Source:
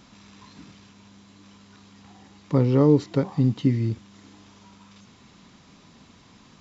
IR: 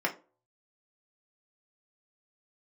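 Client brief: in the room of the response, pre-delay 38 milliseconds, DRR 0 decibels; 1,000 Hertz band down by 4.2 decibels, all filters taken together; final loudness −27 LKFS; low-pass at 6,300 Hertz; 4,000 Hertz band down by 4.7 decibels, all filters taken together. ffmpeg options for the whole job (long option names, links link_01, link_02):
-filter_complex "[0:a]lowpass=6300,equalizer=frequency=1000:width_type=o:gain=-5,equalizer=frequency=4000:width_type=o:gain=-5,asplit=2[link_01][link_02];[1:a]atrim=start_sample=2205,adelay=38[link_03];[link_02][link_03]afir=irnorm=-1:irlink=0,volume=-9dB[link_04];[link_01][link_04]amix=inputs=2:normalize=0,volume=-7dB"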